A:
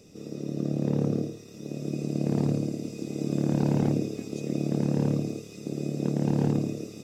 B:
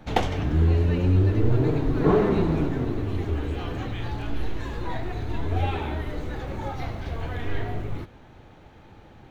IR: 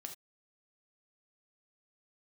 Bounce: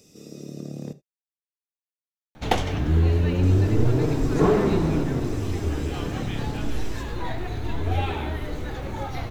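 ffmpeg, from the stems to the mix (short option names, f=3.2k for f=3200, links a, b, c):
-filter_complex "[0:a]highshelf=f=3.5k:g=10.5,acompressor=threshold=-27dB:ratio=2.5,volume=-6.5dB,asplit=3[a][b][c];[a]atrim=end=0.93,asetpts=PTS-STARTPTS,afade=t=out:st=0.926:d=0.004:c=hsin[d];[b]atrim=start=0.93:end=3.43,asetpts=PTS-STARTPTS,volume=0[e];[c]atrim=start=3.43,asetpts=PTS-STARTPTS,afade=t=in:d=0.004:c=hsin[f];[d][e][f]concat=n=3:v=0:a=1,asplit=2[g][h];[h]volume=-3.5dB[i];[1:a]highshelf=f=4.5k:g=7,adelay=2350,volume=0.5dB[j];[2:a]atrim=start_sample=2205[k];[i][k]afir=irnorm=-1:irlink=0[l];[g][j][l]amix=inputs=3:normalize=0"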